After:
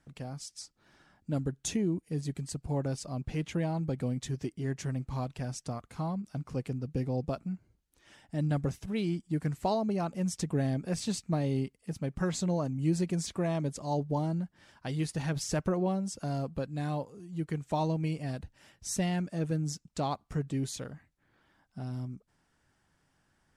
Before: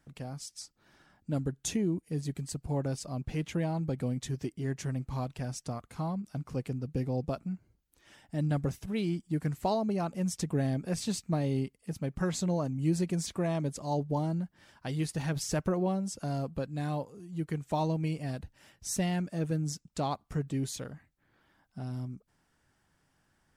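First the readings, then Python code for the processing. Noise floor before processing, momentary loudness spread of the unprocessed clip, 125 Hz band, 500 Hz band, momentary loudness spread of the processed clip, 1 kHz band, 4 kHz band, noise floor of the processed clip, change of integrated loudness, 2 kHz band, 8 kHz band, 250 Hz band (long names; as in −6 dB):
−74 dBFS, 10 LU, 0.0 dB, 0.0 dB, 10 LU, 0.0 dB, 0.0 dB, −74 dBFS, 0.0 dB, 0.0 dB, −0.5 dB, 0.0 dB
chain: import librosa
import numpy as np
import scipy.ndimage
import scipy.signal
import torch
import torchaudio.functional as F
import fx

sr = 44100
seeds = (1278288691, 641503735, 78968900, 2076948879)

y = scipy.signal.sosfilt(scipy.signal.butter(2, 11000.0, 'lowpass', fs=sr, output='sos'), x)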